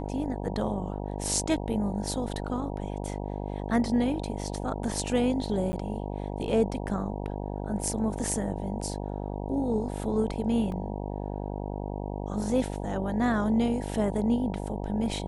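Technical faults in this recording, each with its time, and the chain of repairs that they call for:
buzz 50 Hz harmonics 19 -34 dBFS
5.72–5.73 s: dropout 10 ms
10.72 s: dropout 2.3 ms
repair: de-hum 50 Hz, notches 19; interpolate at 5.72 s, 10 ms; interpolate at 10.72 s, 2.3 ms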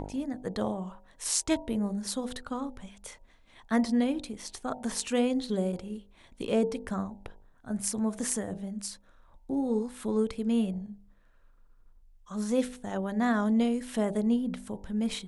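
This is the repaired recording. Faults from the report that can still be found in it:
nothing left

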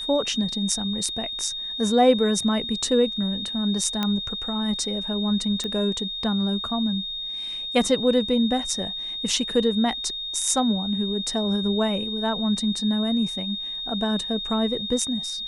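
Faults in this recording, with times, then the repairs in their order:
whine 3.7 kHz -29 dBFS
4.03 s: pop -11 dBFS
5.64 s: pop -17 dBFS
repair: de-click; band-stop 3.7 kHz, Q 30

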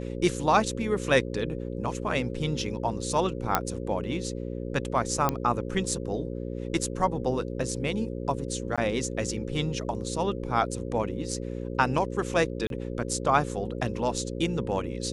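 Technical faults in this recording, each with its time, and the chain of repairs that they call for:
buzz 60 Hz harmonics 9 -34 dBFS
3.55 s: pop -6 dBFS
5.29 s: pop -10 dBFS
8.76–8.78 s: dropout 16 ms
12.67–12.70 s: dropout 32 ms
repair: de-click; de-hum 60 Hz, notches 9; interpolate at 8.76 s, 16 ms; interpolate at 12.67 s, 32 ms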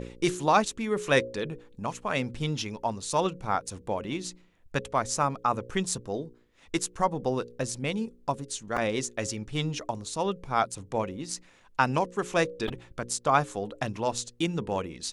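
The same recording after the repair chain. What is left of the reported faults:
nothing left

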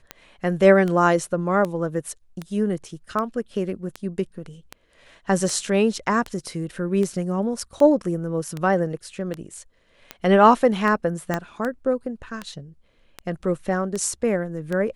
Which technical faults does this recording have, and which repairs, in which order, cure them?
tick 78 rpm -15 dBFS
11.34 s: pop -10 dBFS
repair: de-click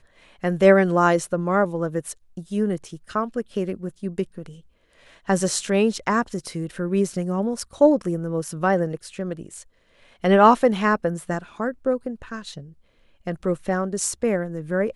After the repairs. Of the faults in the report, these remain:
11.34 s: pop

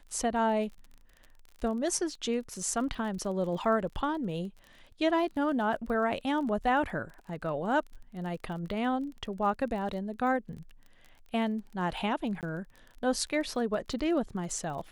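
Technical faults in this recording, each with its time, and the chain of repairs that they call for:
crackle 28 per s -40 dBFS
12.41–12.43 s: dropout 18 ms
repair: de-click; interpolate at 12.41 s, 18 ms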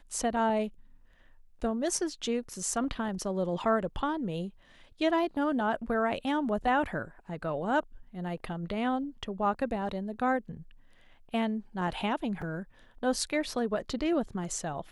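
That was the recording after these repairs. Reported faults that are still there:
nothing left

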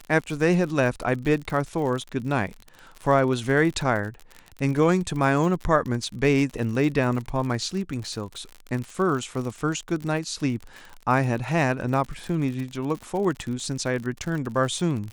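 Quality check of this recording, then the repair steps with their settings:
crackle 54 per s -30 dBFS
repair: de-click

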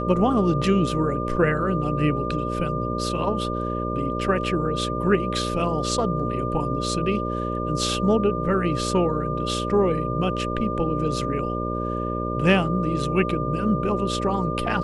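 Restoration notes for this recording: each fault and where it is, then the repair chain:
buzz 60 Hz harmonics 10 -28 dBFS
whine 1.2 kHz -29 dBFS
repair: band-stop 1.2 kHz, Q 30; de-hum 60 Hz, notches 10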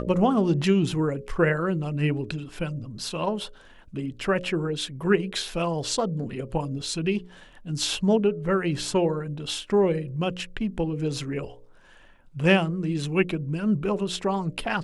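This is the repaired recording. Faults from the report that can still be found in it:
nothing left

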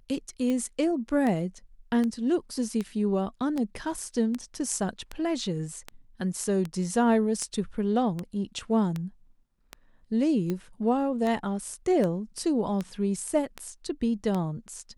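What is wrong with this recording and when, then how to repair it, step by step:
tick 78 rpm -18 dBFS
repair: de-click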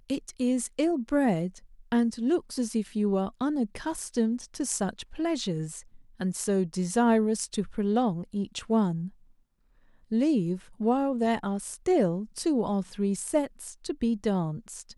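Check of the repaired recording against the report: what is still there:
nothing left

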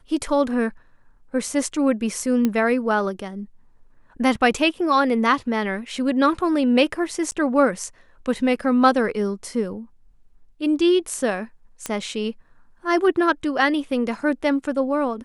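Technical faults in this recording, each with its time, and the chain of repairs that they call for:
2.45 s: pop -9 dBFS
7.31–7.32 s: dropout 9.7 ms
11.86 s: pop -11 dBFS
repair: de-click; interpolate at 7.31 s, 9.7 ms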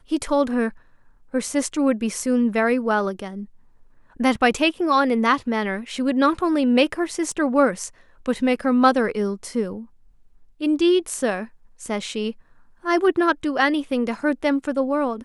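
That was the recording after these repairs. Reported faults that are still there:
nothing left

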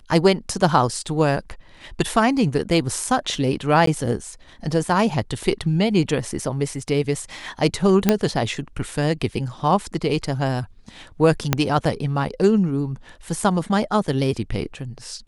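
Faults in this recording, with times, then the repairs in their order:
3.86–3.87 s: dropout 13 ms
8.09 s: pop -1 dBFS
11.53 s: pop -1 dBFS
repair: de-click; interpolate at 3.86 s, 13 ms

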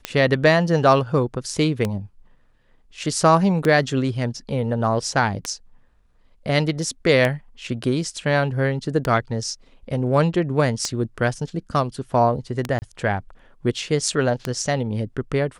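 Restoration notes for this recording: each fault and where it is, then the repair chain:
tick 33 1/3 rpm -8 dBFS
12.79–12.82 s: dropout 29 ms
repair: de-click; interpolate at 12.79 s, 29 ms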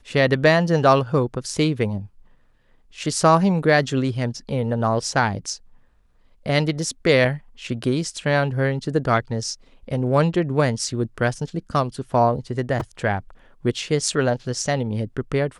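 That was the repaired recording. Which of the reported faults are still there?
nothing left

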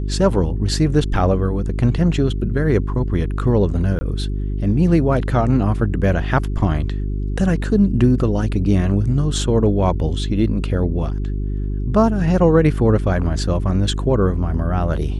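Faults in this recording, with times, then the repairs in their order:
hum 50 Hz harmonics 8 -22 dBFS
3.99–4.01 s: dropout 20 ms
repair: de-hum 50 Hz, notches 8; interpolate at 3.99 s, 20 ms

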